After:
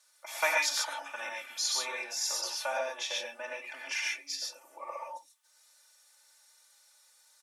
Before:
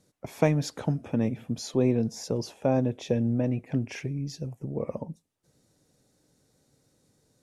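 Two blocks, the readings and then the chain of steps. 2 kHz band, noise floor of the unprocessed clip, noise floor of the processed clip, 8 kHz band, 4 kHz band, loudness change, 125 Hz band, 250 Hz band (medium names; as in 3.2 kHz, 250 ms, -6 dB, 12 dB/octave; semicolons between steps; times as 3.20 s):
+10.5 dB, -71 dBFS, -66 dBFS, +9.5 dB, +10.0 dB, -4.0 dB, under -40 dB, -33.0 dB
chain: high-pass 990 Hz 24 dB/octave; comb 3.4 ms, depth 100%; gated-style reverb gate 160 ms rising, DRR -1.5 dB; trim +3 dB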